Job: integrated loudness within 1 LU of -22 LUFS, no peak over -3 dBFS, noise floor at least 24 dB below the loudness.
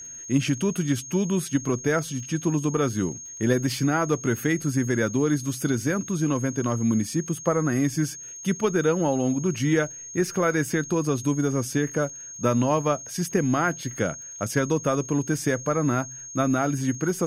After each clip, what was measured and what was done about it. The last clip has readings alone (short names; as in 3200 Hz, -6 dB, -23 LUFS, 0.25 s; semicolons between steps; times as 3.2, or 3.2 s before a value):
ticks 28/s; steady tone 6500 Hz; tone level -37 dBFS; loudness -25.0 LUFS; peak -9.5 dBFS; loudness target -22.0 LUFS
-> de-click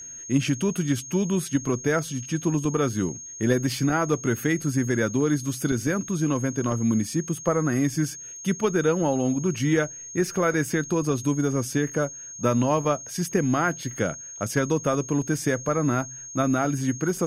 ticks 0.12/s; steady tone 6500 Hz; tone level -37 dBFS
-> notch 6500 Hz, Q 30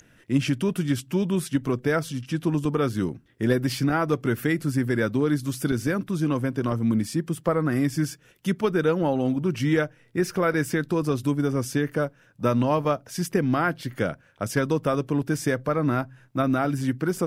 steady tone none; loudness -25.5 LUFS; peak -9.5 dBFS; loudness target -22.0 LUFS
-> gain +3.5 dB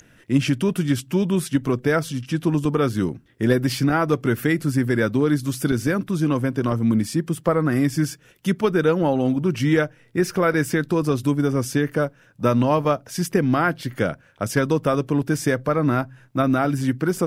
loudness -22.0 LUFS; peak -6.0 dBFS; noise floor -54 dBFS